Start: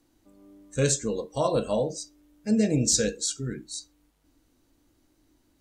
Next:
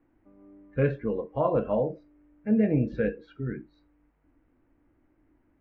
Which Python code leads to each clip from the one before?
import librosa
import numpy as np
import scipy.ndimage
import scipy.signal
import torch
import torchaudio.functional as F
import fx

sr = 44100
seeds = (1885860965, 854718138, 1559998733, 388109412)

y = scipy.signal.sosfilt(scipy.signal.butter(6, 2300.0, 'lowpass', fs=sr, output='sos'), x)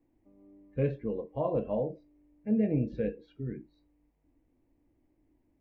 y = fx.peak_eq(x, sr, hz=1400.0, db=-15.0, octaves=0.67)
y = F.gain(torch.from_numpy(y), -4.0).numpy()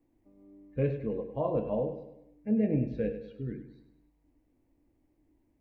y = fx.echo_feedback(x, sr, ms=101, feedback_pct=47, wet_db=-11.0)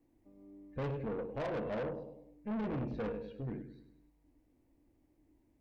y = fx.tube_stage(x, sr, drive_db=35.0, bias=0.35)
y = F.gain(torch.from_numpy(y), 1.0).numpy()